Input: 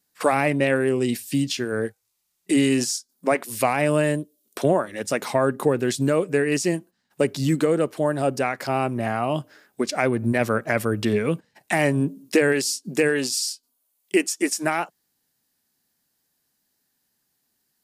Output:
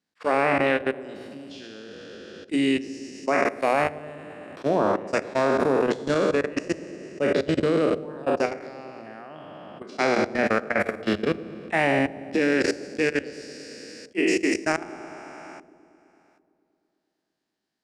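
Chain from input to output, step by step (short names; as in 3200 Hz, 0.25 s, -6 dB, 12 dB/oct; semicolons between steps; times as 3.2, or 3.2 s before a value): spectral trails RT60 2.25 s; LPF 4200 Hz 12 dB/oct; resonant low shelf 140 Hz -9 dB, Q 1.5; notches 60/120/180/240/300/360/420 Hz; harmonic-percussive split harmonic -4 dB; level quantiser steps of 21 dB; bell 88 Hz +10 dB 0.43 oct; dark delay 0.113 s, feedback 79%, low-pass 600 Hz, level -16 dB; attack slew limiter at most 570 dB/s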